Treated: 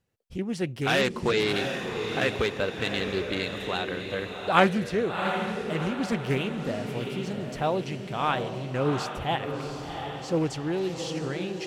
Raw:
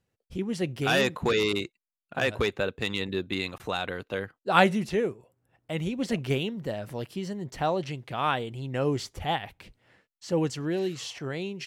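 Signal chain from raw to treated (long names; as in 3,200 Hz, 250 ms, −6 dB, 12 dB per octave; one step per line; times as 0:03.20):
feedback delay with all-pass diffusion 720 ms, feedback 49%, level −6 dB
highs frequency-modulated by the lows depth 0.25 ms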